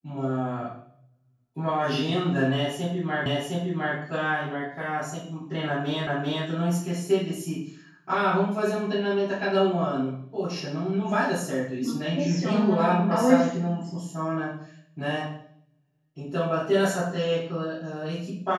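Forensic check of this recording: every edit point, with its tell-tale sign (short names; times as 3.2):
3.26 repeat of the last 0.71 s
6.07 repeat of the last 0.39 s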